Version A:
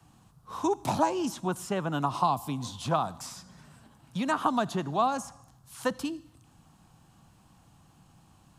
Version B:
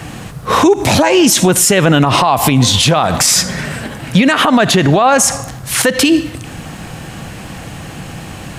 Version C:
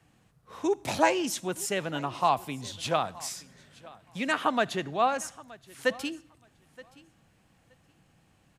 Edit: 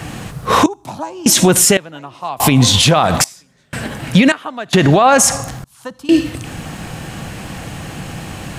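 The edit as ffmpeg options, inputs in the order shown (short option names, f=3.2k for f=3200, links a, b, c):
-filter_complex "[0:a]asplit=2[a][b];[2:a]asplit=3[c][d][e];[1:a]asplit=6[f][g][h][i][j][k];[f]atrim=end=0.662[l];[a]atrim=start=0.658:end=1.262[m];[g]atrim=start=1.258:end=1.772[n];[c]atrim=start=1.768:end=2.402[o];[h]atrim=start=2.398:end=3.242[p];[d]atrim=start=3.238:end=3.732[q];[i]atrim=start=3.728:end=4.322[r];[e]atrim=start=4.318:end=4.732[s];[j]atrim=start=4.728:end=5.642[t];[b]atrim=start=5.638:end=6.092[u];[k]atrim=start=6.088[v];[l][m]acrossfade=d=0.004:c1=hsin:c2=hsin[w];[w][n]acrossfade=d=0.004:c1=hsin:c2=hsin[x];[x][o]acrossfade=d=0.004:c1=hsin:c2=hsin[y];[y][p]acrossfade=d=0.004:c1=hsin:c2=hsin[z];[z][q]acrossfade=d=0.004:c1=hsin:c2=hsin[aa];[aa][r]acrossfade=d=0.004:c1=hsin:c2=hsin[ab];[ab][s]acrossfade=d=0.004:c1=hsin:c2=hsin[ac];[ac][t]acrossfade=d=0.004:c1=hsin:c2=hsin[ad];[ad][u]acrossfade=d=0.004:c1=hsin:c2=hsin[ae];[ae][v]acrossfade=d=0.004:c1=hsin:c2=hsin"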